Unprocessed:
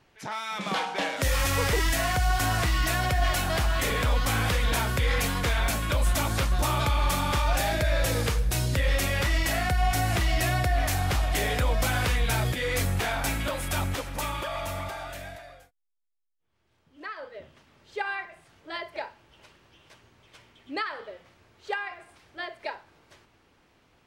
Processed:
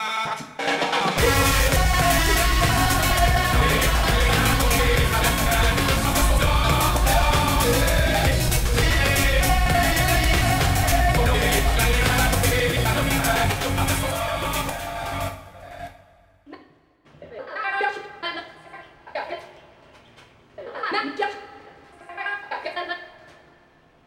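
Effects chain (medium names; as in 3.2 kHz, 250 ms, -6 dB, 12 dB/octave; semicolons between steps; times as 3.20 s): slices played last to first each 84 ms, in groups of 7; two-slope reverb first 0.43 s, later 2.6 s, from -15 dB, DRR 1 dB; tape noise reduction on one side only decoder only; trim +5 dB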